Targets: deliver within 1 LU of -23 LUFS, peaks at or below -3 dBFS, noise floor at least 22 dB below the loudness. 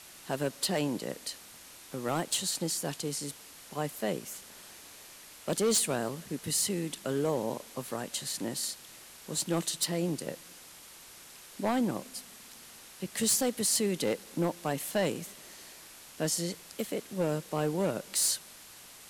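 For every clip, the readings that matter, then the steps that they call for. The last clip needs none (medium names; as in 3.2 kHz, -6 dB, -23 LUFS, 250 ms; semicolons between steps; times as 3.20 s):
clipped samples 0.6%; clipping level -22.0 dBFS; noise floor -51 dBFS; noise floor target -54 dBFS; loudness -32.0 LUFS; peak level -22.0 dBFS; loudness target -23.0 LUFS
-> clip repair -22 dBFS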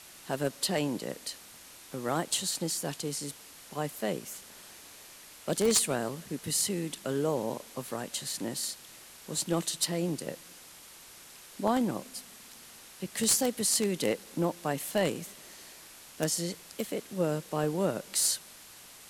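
clipped samples 0.0%; noise floor -51 dBFS; noise floor target -53 dBFS
-> noise print and reduce 6 dB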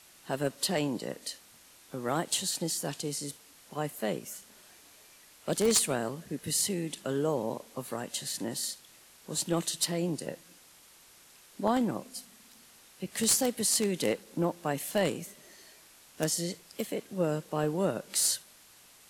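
noise floor -57 dBFS; loudness -31.0 LUFS; peak level -13.0 dBFS; loudness target -23.0 LUFS
-> trim +8 dB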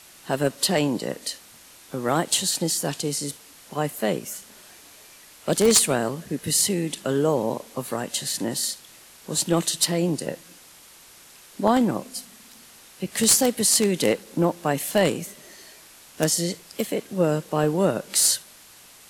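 loudness -23.0 LUFS; peak level -5.0 dBFS; noise floor -49 dBFS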